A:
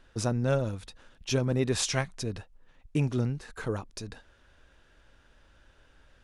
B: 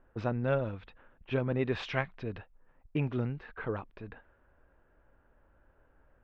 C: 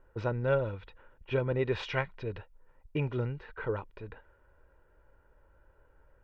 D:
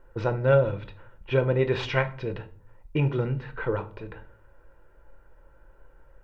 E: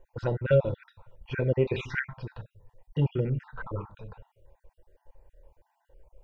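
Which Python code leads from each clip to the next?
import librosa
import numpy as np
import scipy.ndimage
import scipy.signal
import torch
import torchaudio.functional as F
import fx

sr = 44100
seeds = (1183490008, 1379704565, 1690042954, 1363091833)

y1 = scipy.signal.sosfilt(scipy.signal.butter(4, 2900.0, 'lowpass', fs=sr, output='sos'), x)
y1 = fx.env_lowpass(y1, sr, base_hz=920.0, full_db=-27.5)
y1 = fx.low_shelf(y1, sr, hz=380.0, db=-5.5)
y2 = y1 + 0.49 * np.pad(y1, (int(2.1 * sr / 1000.0), 0))[:len(y1)]
y3 = fx.room_shoebox(y2, sr, seeds[0], volume_m3=340.0, walls='furnished', distance_m=0.8)
y3 = y3 * librosa.db_to_amplitude(5.5)
y4 = fx.spec_dropout(y3, sr, seeds[1], share_pct=40)
y4 = fx.env_phaser(y4, sr, low_hz=220.0, high_hz=1700.0, full_db=-20.5)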